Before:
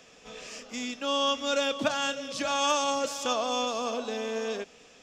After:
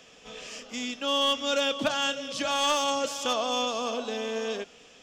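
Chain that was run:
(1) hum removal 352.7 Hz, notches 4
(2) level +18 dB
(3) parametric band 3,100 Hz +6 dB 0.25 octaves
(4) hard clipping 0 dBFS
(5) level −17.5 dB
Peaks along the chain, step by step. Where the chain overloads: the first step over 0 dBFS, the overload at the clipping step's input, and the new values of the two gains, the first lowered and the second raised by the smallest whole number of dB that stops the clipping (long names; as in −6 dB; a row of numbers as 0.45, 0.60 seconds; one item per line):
−13.5, +4.5, +5.5, 0.0, −17.5 dBFS
step 2, 5.5 dB
step 2 +12 dB, step 5 −11.5 dB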